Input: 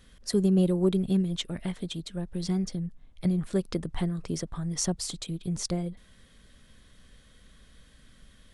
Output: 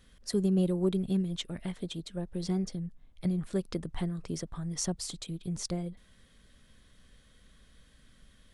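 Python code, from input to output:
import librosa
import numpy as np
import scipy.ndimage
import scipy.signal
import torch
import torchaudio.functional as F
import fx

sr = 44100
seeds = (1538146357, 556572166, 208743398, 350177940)

y = fx.dynamic_eq(x, sr, hz=500.0, q=0.85, threshold_db=-42.0, ratio=4.0, max_db=5, at=(1.73, 2.71))
y = F.gain(torch.from_numpy(y), -4.0).numpy()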